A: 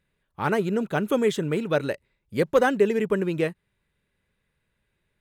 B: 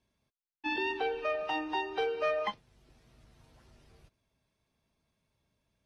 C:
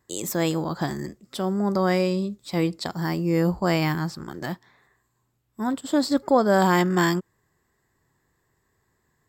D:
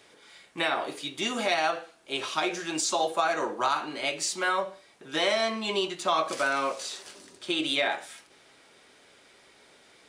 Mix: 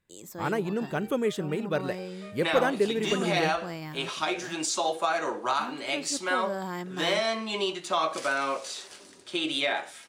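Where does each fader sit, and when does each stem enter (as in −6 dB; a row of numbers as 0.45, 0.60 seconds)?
−5.0, −17.0, −15.5, −1.0 decibels; 0.00, 0.00, 0.00, 1.85 seconds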